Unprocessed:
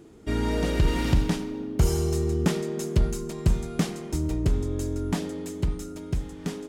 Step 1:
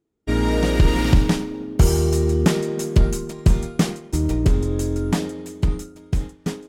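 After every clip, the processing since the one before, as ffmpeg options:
-af "agate=range=0.0224:threshold=0.0398:ratio=3:detection=peak,volume=2.11"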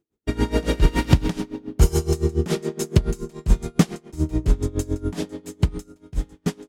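-af "aeval=exprs='val(0)*pow(10,-21*(0.5-0.5*cos(2*PI*7.1*n/s))/20)':c=same,volume=1.33"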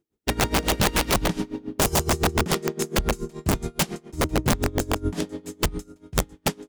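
-af "aeval=exprs='(mod(5.01*val(0)+1,2)-1)/5.01':c=same"

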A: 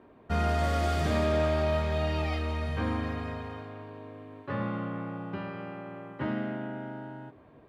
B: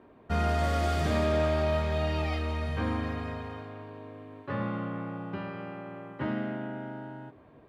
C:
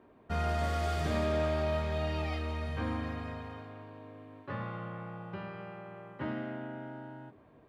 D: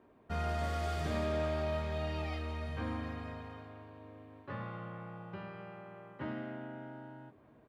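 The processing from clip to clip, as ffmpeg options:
-af anull
-af "bandreject=f=69.33:t=h:w=4,bandreject=f=138.66:t=h:w=4,bandreject=f=207.99:t=h:w=4,bandreject=f=277.32:t=h:w=4,bandreject=f=346.65:t=h:w=4,bandreject=f=415.98:t=h:w=4,bandreject=f=485.31:t=h:w=4,bandreject=f=554.64:t=h:w=4,volume=0.631"
-filter_complex "[0:a]asplit=2[s0][s1];[s1]adelay=1224,volume=0.0447,highshelf=f=4000:g=-27.6[s2];[s0][s2]amix=inputs=2:normalize=0,volume=0.668"

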